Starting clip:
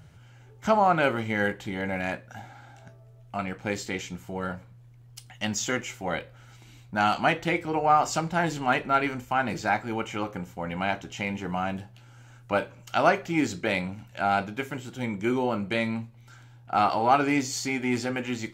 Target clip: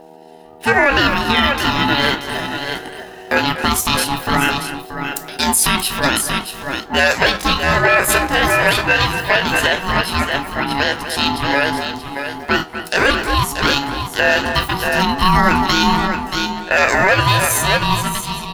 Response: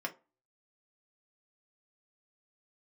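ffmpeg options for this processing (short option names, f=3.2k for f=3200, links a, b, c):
-filter_complex "[0:a]dynaudnorm=f=150:g=11:m=16.5dB,aeval=exprs='val(0)+0.0126*(sin(2*PI*50*n/s)+sin(2*PI*2*50*n/s)/2+sin(2*PI*3*50*n/s)/3+sin(2*PI*4*50*n/s)/4+sin(2*PI*5*50*n/s)/5)':c=same,asetrate=68011,aresample=44100,atempo=0.64842,highshelf=f=9.6k:g=6,flanger=delay=1.7:depth=6.6:regen=78:speed=0.99:shape=sinusoidal,lowshelf=f=150:g=-10.5,asplit=2[a][b];[b]adelay=240,highpass=300,lowpass=3.4k,asoftclip=type=hard:threshold=-13dB,volume=-12dB[c];[a][c]amix=inputs=2:normalize=0,aeval=exprs='val(0)*sin(2*PI*560*n/s)':c=same,asplit=2[d][e];[e]aecho=0:1:631:0.355[f];[d][f]amix=inputs=2:normalize=0,alimiter=level_in=12.5dB:limit=-1dB:release=50:level=0:latency=1,volume=-1dB"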